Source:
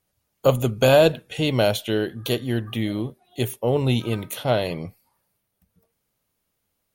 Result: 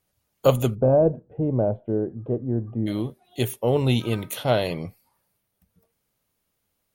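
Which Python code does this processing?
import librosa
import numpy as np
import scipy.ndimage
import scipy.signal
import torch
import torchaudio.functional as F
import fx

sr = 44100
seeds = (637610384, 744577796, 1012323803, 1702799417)

y = fx.bessel_lowpass(x, sr, hz=570.0, order=4, at=(0.74, 2.86), fade=0.02)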